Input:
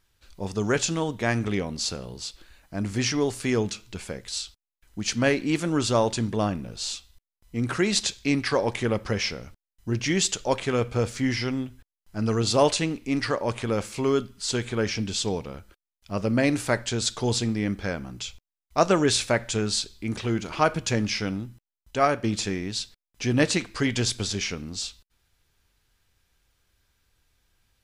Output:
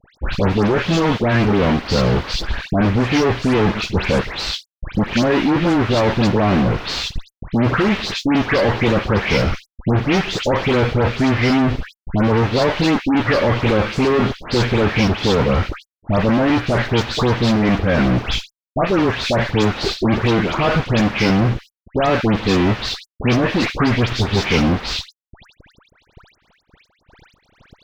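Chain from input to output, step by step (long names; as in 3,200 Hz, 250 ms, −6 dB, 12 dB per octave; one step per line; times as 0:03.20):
one scale factor per block 5 bits
transient designer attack +2 dB, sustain −8 dB
gain on a spectral selection 0:19.74–0:20.05, 330–930 Hz +10 dB
reversed playback
downward compressor 10 to 1, threshold −34 dBFS, peak gain reduction 21 dB
reversed playback
fuzz pedal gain 56 dB, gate −60 dBFS
high-frequency loss of the air 250 metres
all-pass dispersion highs, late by 123 ms, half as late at 2,100 Hz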